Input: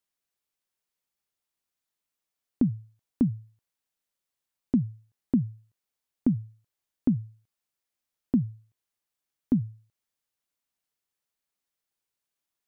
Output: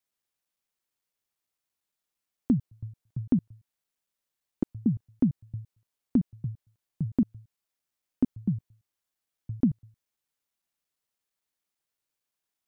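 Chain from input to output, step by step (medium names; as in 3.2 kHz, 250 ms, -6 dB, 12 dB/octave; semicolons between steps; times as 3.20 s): slices played last to first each 113 ms, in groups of 2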